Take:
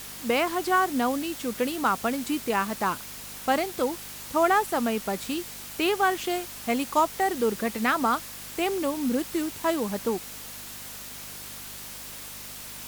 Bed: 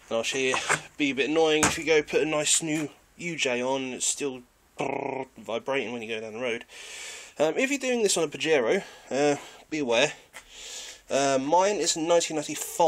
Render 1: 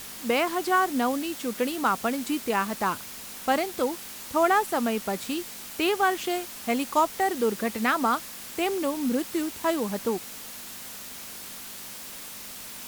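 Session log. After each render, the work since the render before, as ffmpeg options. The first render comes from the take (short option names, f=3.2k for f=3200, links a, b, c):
-af "bandreject=f=50:t=h:w=4,bandreject=f=100:t=h:w=4,bandreject=f=150:t=h:w=4"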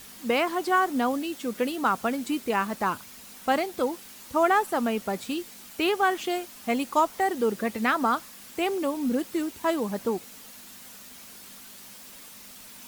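-af "afftdn=nr=7:nf=-41"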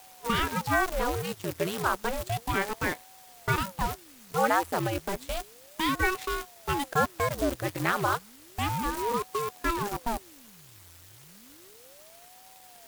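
-af "acrusher=bits=6:dc=4:mix=0:aa=0.000001,aeval=exprs='val(0)*sin(2*PI*420*n/s+420*0.8/0.32*sin(2*PI*0.32*n/s))':c=same"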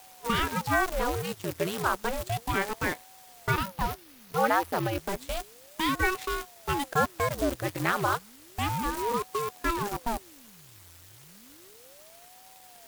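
-filter_complex "[0:a]asettb=1/sr,asplit=3[a][b][c];[a]atrim=end=3.514[d];[b]atrim=start=3.51:end=4.98,asetpts=PTS-STARTPTS,afade=t=in:d=0.004:c=qsin,afade=t=out:st=1.466:d=0.004:c=qsin,equalizer=f=7.7k:t=o:w=0.52:g=-6.5[e];[c]atrim=start=4.976[f];[d][e]acrossfade=d=0.004:c1=hsin:c2=qsin[g];[g][f]acrossfade=d=0.004:c1=qsin:c2=hsin"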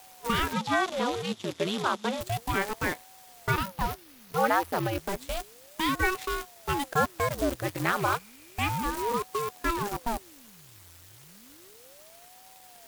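-filter_complex "[0:a]asettb=1/sr,asplit=3[a][b][c];[a]atrim=end=0.534[d];[b]atrim=start=0.53:end=2.21,asetpts=PTS-STARTPTS,afade=t=in:d=0.004:c=qsin,afade=t=out:st=1.676:d=0.004:c=qsin,highpass=170,equalizer=f=220:t=q:w=4:g=9,equalizer=f=1.6k:t=q:w=4:g=-3,equalizer=f=3.5k:t=q:w=4:g=9,equalizer=f=8.8k:t=q:w=4:g=-8,lowpass=f=9.8k:w=0.5412,lowpass=f=9.8k:w=1.3066[e];[c]atrim=start=2.206[f];[d][e]acrossfade=d=0.004:c1=hsin:c2=qsin[g];[g][f]acrossfade=d=0.004:c1=qsin:c2=hsin,asettb=1/sr,asplit=3[h][i][j];[h]atrim=end=8.014[k];[i]atrim=start=8.01:end=8.7,asetpts=PTS-STARTPTS,afade=t=in:d=0.004:c=qsin,afade=t=out:st=0.686:d=0.004:c=qsin,equalizer=f=2.4k:w=6.6:g=11[l];[j]atrim=start=8.696[m];[k][l]acrossfade=d=0.004:c1=hsin:c2=qsin[n];[n][m]acrossfade=d=0.004:c1=qsin:c2=hsin"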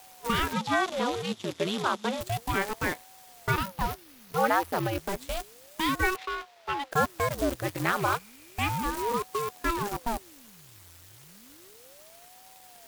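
-filter_complex "[0:a]asettb=1/sr,asplit=3[a][b][c];[a]atrim=end=6.164[d];[b]atrim=start=6.16:end=6.92,asetpts=PTS-STARTPTS,afade=t=in:d=0.004:c=qsin,afade=t=out:st=0.756:d=0.004:c=qsin,acrossover=split=430 4700:gain=0.224 1 0.112[e][f][g];[e][f][g]amix=inputs=3:normalize=0[h];[c]atrim=start=6.916[i];[d][h]acrossfade=d=0.004:c1=hsin:c2=qsin[j];[j][i]acrossfade=d=0.004:c1=qsin:c2=hsin"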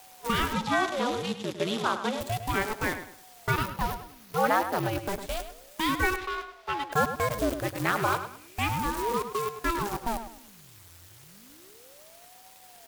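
-filter_complex "[0:a]asplit=2[a][b];[b]adelay=104,lowpass=f=3.4k:p=1,volume=-9.5dB,asplit=2[c][d];[d]adelay=104,lowpass=f=3.4k:p=1,volume=0.31,asplit=2[e][f];[f]adelay=104,lowpass=f=3.4k:p=1,volume=0.31[g];[a][c][e][g]amix=inputs=4:normalize=0"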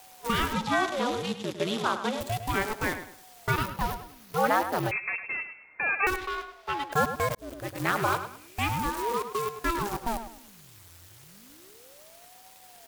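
-filter_complex "[0:a]asettb=1/sr,asplit=3[a][b][c];[a]atrim=end=4.914[d];[b]atrim=start=4.91:end=6.07,asetpts=PTS-STARTPTS,afade=t=in:d=0.004:c=qsin,afade=t=out:st=1.156:d=0.004:c=qsin,lowpass=f=2.3k:t=q:w=0.5098,lowpass=f=2.3k:t=q:w=0.6013,lowpass=f=2.3k:t=q:w=0.9,lowpass=f=2.3k:t=q:w=2.563,afreqshift=-2700[e];[c]atrim=start=6.066[f];[d][e]acrossfade=d=0.004:c1=hsin:c2=qsin[g];[g][f]acrossfade=d=0.004:c1=qsin:c2=hsin,asettb=1/sr,asplit=3[h][i][j];[h]atrim=end=8.894[k];[i]atrim=start=8.89:end=9.35,asetpts=PTS-STARTPTS,afade=t=in:d=0.004:c=qsin,afade=t=out:st=0.456:d=0.004:c=qsin,bass=f=250:g=-8,treble=f=4k:g=-1[l];[j]atrim=start=9.346[m];[k][l]acrossfade=d=0.004:c1=hsin:c2=qsin[n];[n][m]acrossfade=d=0.004:c1=qsin:c2=hsin,asplit=2[o][p];[o]atrim=end=7.35,asetpts=PTS-STARTPTS,afade=t=out:st=7.346:d=0.004:c=hsin[q];[p]atrim=start=7.35,asetpts=PTS-STARTPTS,afade=t=in:d=0.55[r];[q][r]concat=n=2:v=0:a=1"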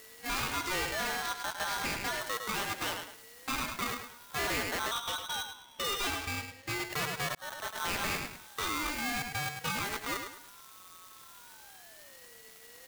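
-af "aeval=exprs='(tanh(31.6*val(0)+0.35)-tanh(0.35))/31.6':c=same,aeval=exprs='val(0)*sgn(sin(2*PI*1200*n/s))':c=same"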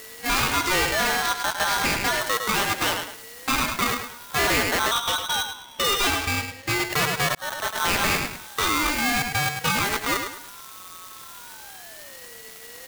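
-af "volume=11dB"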